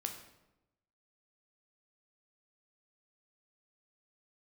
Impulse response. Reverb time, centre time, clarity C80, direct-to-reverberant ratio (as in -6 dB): 0.95 s, 22 ms, 10.0 dB, 3.5 dB